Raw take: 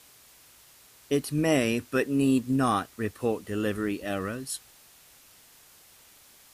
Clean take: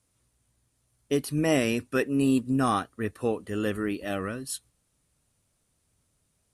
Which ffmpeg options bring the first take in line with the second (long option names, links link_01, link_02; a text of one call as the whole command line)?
ffmpeg -i in.wav -af "afwtdn=0.002" out.wav